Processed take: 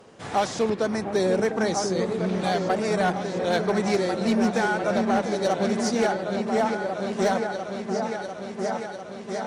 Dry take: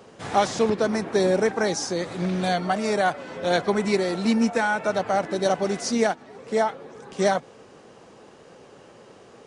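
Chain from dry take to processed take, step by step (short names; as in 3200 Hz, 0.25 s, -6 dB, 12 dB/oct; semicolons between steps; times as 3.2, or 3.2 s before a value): vibrato 12 Hz 19 cents; repeats that get brighter 0.698 s, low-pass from 400 Hz, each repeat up 2 oct, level -3 dB; one-sided clip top -13.5 dBFS, bottom -13 dBFS; gain -2 dB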